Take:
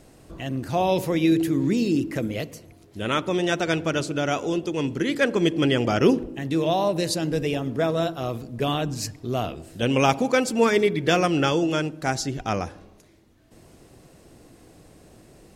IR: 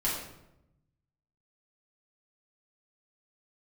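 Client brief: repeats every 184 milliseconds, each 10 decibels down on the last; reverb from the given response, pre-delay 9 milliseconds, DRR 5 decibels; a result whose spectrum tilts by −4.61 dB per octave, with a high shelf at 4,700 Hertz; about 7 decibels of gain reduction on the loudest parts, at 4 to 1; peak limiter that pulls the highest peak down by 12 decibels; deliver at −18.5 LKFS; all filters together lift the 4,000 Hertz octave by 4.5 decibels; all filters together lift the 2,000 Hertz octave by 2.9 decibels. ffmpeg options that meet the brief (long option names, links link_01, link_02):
-filter_complex "[0:a]equalizer=frequency=2000:width_type=o:gain=3,equalizer=frequency=4000:width_type=o:gain=8,highshelf=frequency=4700:gain=-7,acompressor=threshold=-22dB:ratio=4,alimiter=limit=-22.5dB:level=0:latency=1,aecho=1:1:184|368|552|736:0.316|0.101|0.0324|0.0104,asplit=2[link_01][link_02];[1:a]atrim=start_sample=2205,adelay=9[link_03];[link_02][link_03]afir=irnorm=-1:irlink=0,volume=-12.5dB[link_04];[link_01][link_04]amix=inputs=2:normalize=0,volume=11.5dB"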